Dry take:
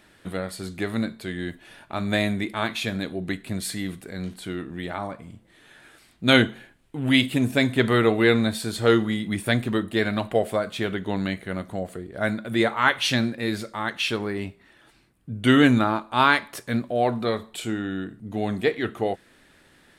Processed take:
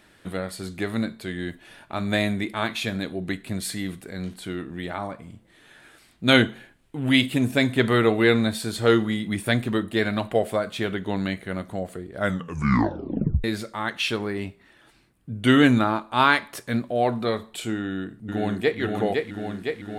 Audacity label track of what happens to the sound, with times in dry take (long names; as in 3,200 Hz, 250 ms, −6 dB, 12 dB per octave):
12.180000	12.180000	tape stop 1.26 s
17.770000	18.790000	delay throw 510 ms, feedback 75%, level −3.5 dB